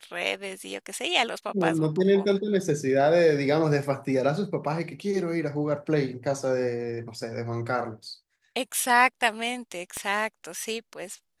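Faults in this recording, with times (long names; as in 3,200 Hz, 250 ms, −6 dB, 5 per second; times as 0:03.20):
0:09.97: click −17 dBFS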